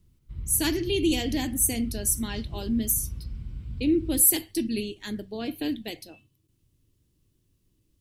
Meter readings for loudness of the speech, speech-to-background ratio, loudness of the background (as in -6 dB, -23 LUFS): -25.5 LUFS, 13.5 dB, -39.0 LUFS